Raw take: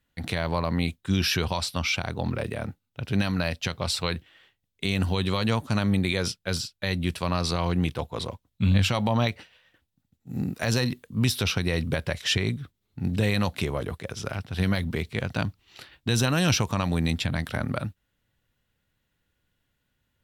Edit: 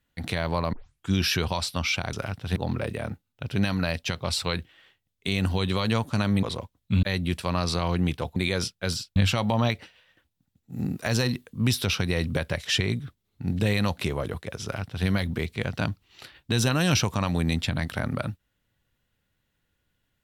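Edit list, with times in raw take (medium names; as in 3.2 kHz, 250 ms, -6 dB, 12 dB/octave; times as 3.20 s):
0.73 s: tape start 0.36 s
6.00–6.80 s: swap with 8.13–8.73 s
14.20–14.63 s: copy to 2.13 s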